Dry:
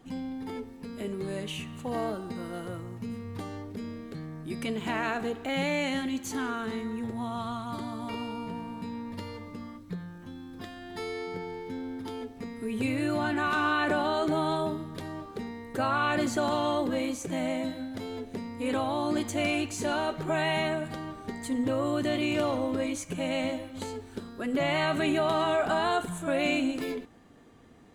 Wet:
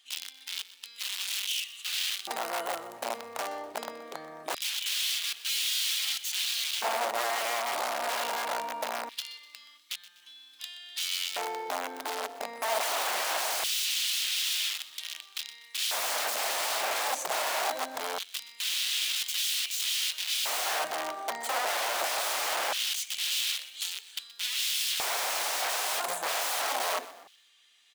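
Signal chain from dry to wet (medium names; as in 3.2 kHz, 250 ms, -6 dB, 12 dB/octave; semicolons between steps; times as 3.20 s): integer overflow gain 30.5 dB; frequency-shifting echo 124 ms, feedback 43%, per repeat +33 Hz, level -17 dB; LFO high-pass square 0.22 Hz 680–3200 Hz; trim +3.5 dB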